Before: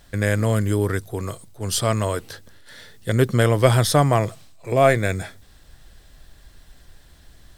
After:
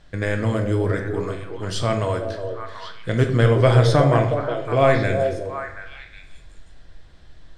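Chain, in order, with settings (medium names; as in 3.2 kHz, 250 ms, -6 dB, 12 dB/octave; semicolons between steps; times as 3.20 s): distance through air 110 m; repeats whose band climbs or falls 366 ms, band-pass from 470 Hz, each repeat 1.4 oct, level -3 dB; simulated room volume 180 m³, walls mixed, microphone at 0.55 m; trim -1 dB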